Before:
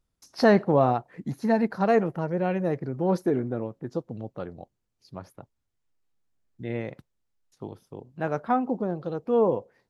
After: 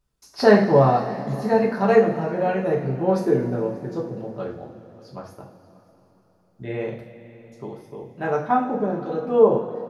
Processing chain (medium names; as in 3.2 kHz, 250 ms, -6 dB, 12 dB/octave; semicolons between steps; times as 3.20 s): hum notches 50/100/150/200 Hz; delay 584 ms -23.5 dB; two-slope reverb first 0.42 s, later 4.1 s, from -18 dB, DRR -3 dB